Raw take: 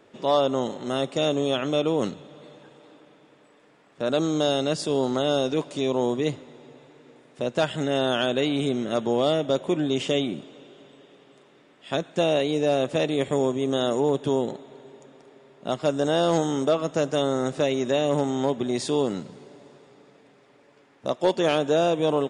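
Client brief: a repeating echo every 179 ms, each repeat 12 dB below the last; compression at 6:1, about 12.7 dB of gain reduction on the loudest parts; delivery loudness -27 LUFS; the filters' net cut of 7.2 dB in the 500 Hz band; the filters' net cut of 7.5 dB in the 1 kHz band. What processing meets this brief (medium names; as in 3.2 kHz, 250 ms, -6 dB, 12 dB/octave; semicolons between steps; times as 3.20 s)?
peaking EQ 500 Hz -7 dB; peaking EQ 1 kHz -7.5 dB; compression 6:1, threshold -37 dBFS; feedback delay 179 ms, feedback 25%, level -12 dB; trim +13.5 dB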